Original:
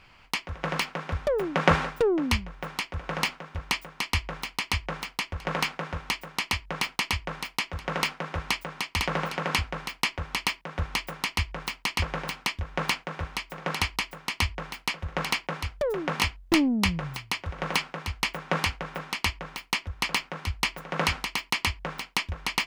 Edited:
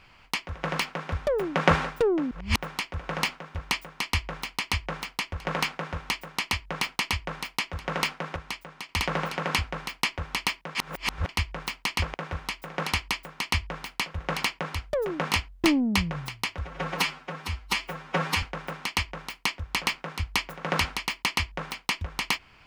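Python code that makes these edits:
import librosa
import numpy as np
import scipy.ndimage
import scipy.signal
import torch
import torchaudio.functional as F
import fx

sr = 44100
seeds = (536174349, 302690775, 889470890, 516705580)

y = fx.edit(x, sr, fx.reverse_span(start_s=2.31, length_s=0.25),
    fx.clip_gain(start_s=8.36, length_s=0.53, db=-7.5),
    fx.reverse_span(start_s=10.75, length_s=0.54),
    fx.cut(start_s=12.14, length_s=0.88),
    fx.stretch_span(start_s=17.49, length_s=1.21, factor=1.5), tone=tone)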